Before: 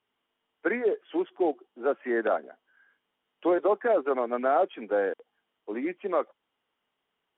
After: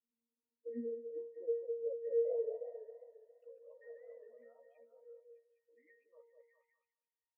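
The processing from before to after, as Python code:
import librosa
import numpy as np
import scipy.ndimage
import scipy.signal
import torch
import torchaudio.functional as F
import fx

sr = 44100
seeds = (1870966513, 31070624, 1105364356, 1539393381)

y = fx.envelope_sharpen(x, sr, power=3.0)
y = fx.octave_resonator(y, sr, note='A#', decay_s=0.38)
y = fx.filter_sweep_bandpass(y, sr, from_hz=240.0, to_hz=2200.0, start_s=1.07, end_s=3.51, q=4.0)
y = fx.doubler(y, sr, ms=13.0, db=-3.5)
y = fx.echo_stepped(y, sr, ms=203, hz=600.0, octaves=0.7, feedback_pct=70, wet_db=-2.5)
y = fx.echo_warbled(y, sr, ms=136, feedback_pct=64, rate_hz=2.8, cents=152, wet_db=-8.0, at=(2.11, 4.44))
y = F.gain(torch.from_numpy(y), 7.0).numpy()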